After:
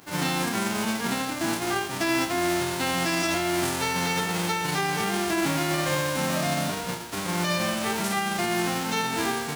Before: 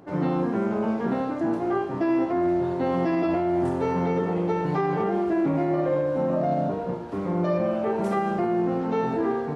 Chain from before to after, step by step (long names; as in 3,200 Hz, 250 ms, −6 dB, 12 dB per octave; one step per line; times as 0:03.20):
spectral envelope flattened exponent 0.3
level −2 dB